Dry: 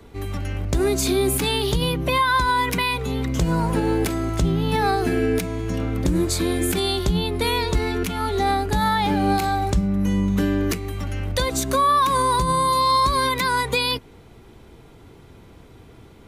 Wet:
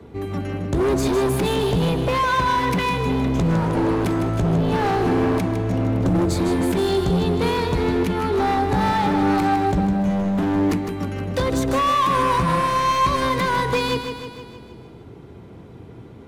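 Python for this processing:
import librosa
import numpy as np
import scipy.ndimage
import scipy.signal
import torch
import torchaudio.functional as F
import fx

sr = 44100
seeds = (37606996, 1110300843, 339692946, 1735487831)

y = scipy.signal.sosfilt(scipy.signal.butter(2, 130.0, 'highpass', fs=sr, output='sos'), x)
y = fx.tilt_eq(y, sr, slope=-3.0)
y = fx.hum_notches(y, sr, base_hz=50, count=6)
y = np.clip(10.0 ** (18.5 / 20.0) * y, -1.0, 1.0) / 10.0 ** (18.5 / 20.0)
y = fx.echo_feedback(y, sr, ms=156, feedback_pct=57, wet_db=-8.0)
y = F.gain(torch.from_numpy(y), 1.5).numpy()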